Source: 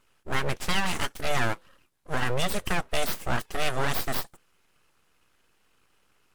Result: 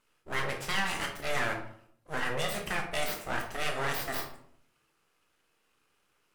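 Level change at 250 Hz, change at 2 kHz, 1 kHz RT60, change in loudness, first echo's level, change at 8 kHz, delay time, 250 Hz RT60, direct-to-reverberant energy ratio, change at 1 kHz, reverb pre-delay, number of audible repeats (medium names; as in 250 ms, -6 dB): -6.5 dB, -1.5 dB, 0.60 s, -3.5 dB, no echo, -4.5 dB, no echo, 0.80 s, 2.0 dB, -4.0 dB, 14 ms, no echo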